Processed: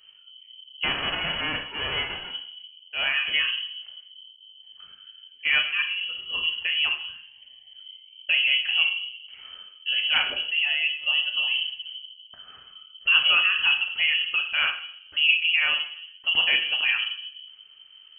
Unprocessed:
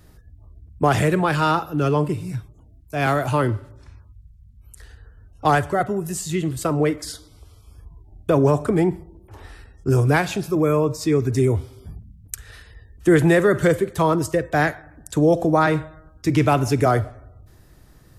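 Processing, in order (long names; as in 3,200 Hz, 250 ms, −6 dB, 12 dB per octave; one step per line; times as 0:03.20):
0:00.83–0:02.30: spectral envelope flattened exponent 0.1
on a send at −3 dB: convolution reverb RT60 0.65 s, pre-delay 6 ms
on the sum: voice inversion scrambler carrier 3,100 Hz
level −7.5 dB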